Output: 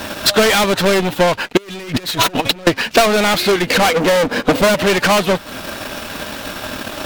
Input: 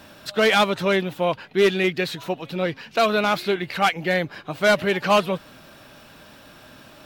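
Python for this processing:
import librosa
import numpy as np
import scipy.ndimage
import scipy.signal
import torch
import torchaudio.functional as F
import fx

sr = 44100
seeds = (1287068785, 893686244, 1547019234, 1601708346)

p1 = fx.small_body(x, sr, hz=(250.0, 480.0), ring_ms=60, db=17, at=(3.65, 4.74), fade=0.02)
p2 = fx.fold_sine(p1, sr, drive_db=12, ceiling_db=-2.5)
p3 = p1 + (p2 * librosa.db_to_amplitude(-8.0))
p4 = fx.leveller(p3, sr, passes=5)
p5 = fx.over_compress(p4, sr, threshold_db=-12.0, ratio=-0.5, at=(1.57, 2.67))
p6 = fx.peak_eq(p5, sr, hz=140.0, db=-9.0, octaves=0.47)
p7 = fx.transient(p6, sr, attack_db=8, sustain_db=-8)
y = p7 * librosa.db_to_amplitude(-8.5)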